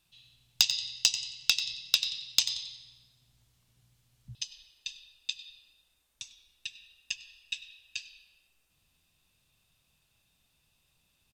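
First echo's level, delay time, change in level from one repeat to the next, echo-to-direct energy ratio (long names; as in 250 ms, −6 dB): −22.5 dB, 99 ms, repeats not evenly spaced, −22.5 dB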